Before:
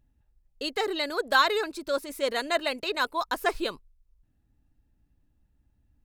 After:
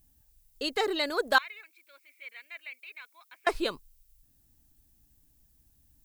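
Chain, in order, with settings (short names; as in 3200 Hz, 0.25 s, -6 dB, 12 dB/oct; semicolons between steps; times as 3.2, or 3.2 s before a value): 1.38–3.47 band-pass 2300 Hz, Q 14; added noise violet -68 dBFS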